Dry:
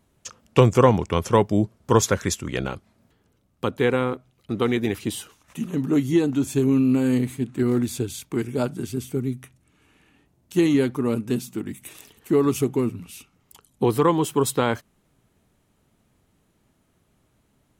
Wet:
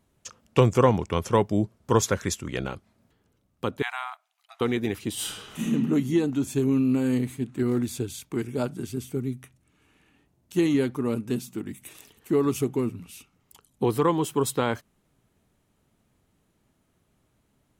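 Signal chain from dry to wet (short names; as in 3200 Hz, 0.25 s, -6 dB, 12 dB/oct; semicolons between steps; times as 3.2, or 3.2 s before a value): 3.82–4.61 brick-wall FIR high-pass 640 Hz; 5.14–5.63 reverb throw, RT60 1.4 s, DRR -11 dB; gain -3.5 dB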